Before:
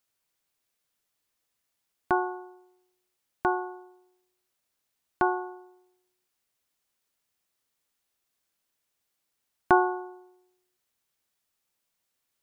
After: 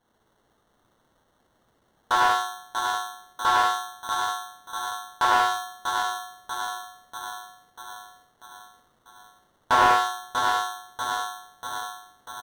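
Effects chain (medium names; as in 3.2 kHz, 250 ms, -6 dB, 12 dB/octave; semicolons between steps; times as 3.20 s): high-pass 1.2 kHz 12 dB/octave; in parallel at -4 dB: sine folder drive 12 dB, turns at -7.5 dBFS; on the sum: low-pass 2 kHz 6 dB/octave; tilt EQ +3 dB/octave; on a send: feedback delay 641 ms, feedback 56%, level -7 dB; on the sum: gated-style reverb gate 210 ms flat, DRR -6.5 dB; sample-and-hold 18×; slew-rate limiter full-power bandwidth 600 Hz; trim -5.5 dB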